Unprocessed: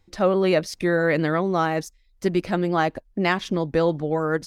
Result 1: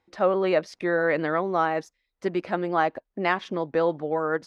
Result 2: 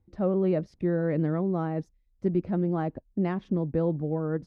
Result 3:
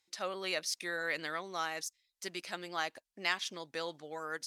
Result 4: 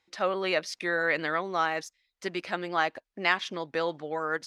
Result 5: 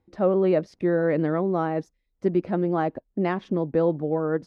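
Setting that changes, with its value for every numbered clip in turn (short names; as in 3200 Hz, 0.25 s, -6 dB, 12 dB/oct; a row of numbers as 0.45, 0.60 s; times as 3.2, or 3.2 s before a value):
band-pass, frequency: 940, 120, 7900, 2500, 310 Hz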